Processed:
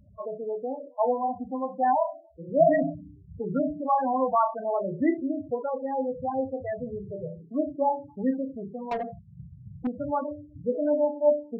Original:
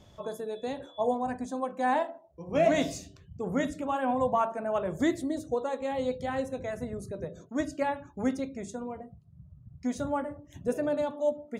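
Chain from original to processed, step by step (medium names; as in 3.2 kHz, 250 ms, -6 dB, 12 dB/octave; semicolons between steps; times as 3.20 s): local Wiener filter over 15 samples; LFO low-pass saw down 3.8 Hz 860–3800 Hz; flutter echo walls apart 5.2 m, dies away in 0.27 s; loudest bins only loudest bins 8; 8.91–9.87 s: overdrive pedal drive 25 dB, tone 3.5 kHz, clips at -21.5 dBFS; trim +1.5 dB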